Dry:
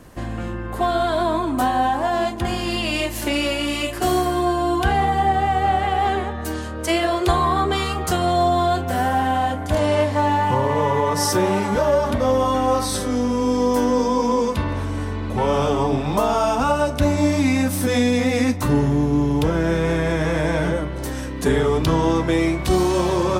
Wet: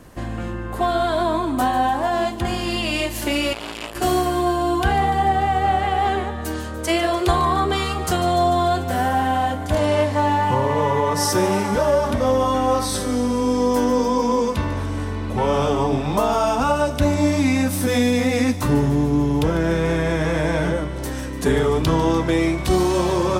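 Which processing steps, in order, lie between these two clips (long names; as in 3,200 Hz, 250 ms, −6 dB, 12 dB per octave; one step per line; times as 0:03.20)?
on a send: delay with a high-pass on its return 147 ms, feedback 72%, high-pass 3,700 Hz, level −13 dB
0:03.53–0:03.95: on the sum: saturating transformer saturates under 2,200 Hz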